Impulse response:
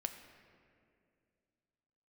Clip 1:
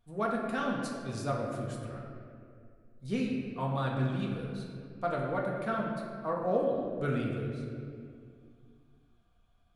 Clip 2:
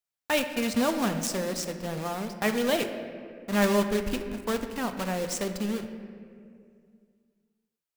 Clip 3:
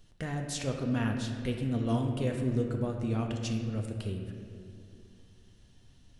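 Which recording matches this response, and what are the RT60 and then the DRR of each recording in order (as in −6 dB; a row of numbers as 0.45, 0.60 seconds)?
2; 2.3, 2.3, 2.3 seconds; −3.0, 6.0, 2.0 decibels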